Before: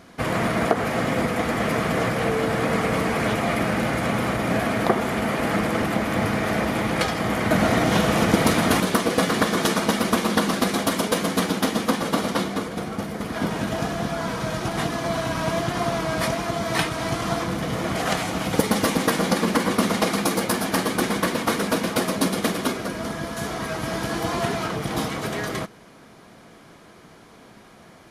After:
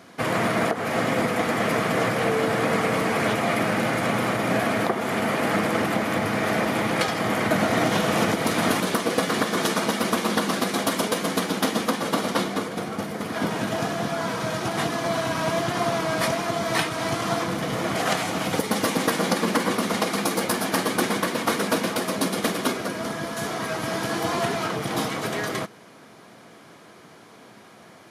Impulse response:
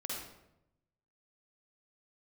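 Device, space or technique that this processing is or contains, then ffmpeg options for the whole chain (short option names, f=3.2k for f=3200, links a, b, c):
car stereo with a boomy subwoofer: -af "lowshelf=f=120:t=q:w=1.5:g=9.5,alimiter=limit=-10.5dB:level=0:latency=1:release=241,highpass=f=150:w=0.5412,highpass=f=150:w=1.3066,volume=1dB"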